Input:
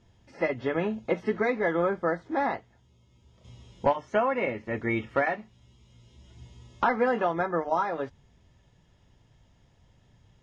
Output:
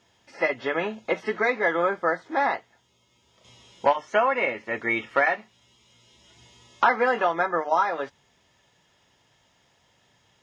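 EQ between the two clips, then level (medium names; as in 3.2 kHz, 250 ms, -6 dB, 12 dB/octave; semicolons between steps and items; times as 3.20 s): high-pass 950 Hz 6 dB/octave; +8.0 dB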